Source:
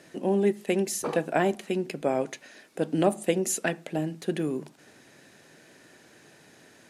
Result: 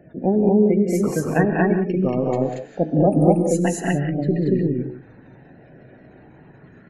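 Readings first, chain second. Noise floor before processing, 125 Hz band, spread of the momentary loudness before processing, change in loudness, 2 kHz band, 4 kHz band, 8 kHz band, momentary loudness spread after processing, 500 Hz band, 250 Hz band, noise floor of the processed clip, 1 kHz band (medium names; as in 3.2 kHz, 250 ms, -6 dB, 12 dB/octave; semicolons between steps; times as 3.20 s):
-56 dBFS, +14.0 dB, 8 LU, +8.0 dB, +4.5 dB, no reading, -1.5 dB, 8 LU, +7.0 dB, +10.5 dB, -48 dBFS, +6.0 dB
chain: rattle on loud lows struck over -37 dBFS, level -29 dBFS; RIAA curve playback; de-hum 104.3 Hz, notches 4; spectral gate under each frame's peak -25 dB strong; tone controls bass +3 dB, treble +9 dB; rotary cabinet horn 7 Hz; wow and flutter 110 cents; doubling 16 ms -13.5 dB; on a send: loudspeakers at several distances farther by 66 m -5 dB, 79 m 0 dB; on the sum: gated-style reverb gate 200 ms rising, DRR 9.5 dB; sweeping bell 0.34 Hz 680–1700 Hz +9 dB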